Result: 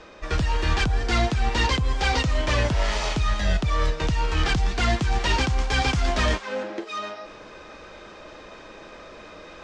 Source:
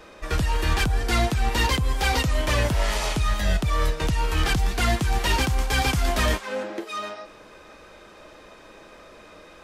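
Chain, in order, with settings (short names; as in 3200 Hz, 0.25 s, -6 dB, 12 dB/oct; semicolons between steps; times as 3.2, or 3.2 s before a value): LPF 6800 Hz 24 dB/oct; reverse; upward compressor, threshold -36 dBFS; reverse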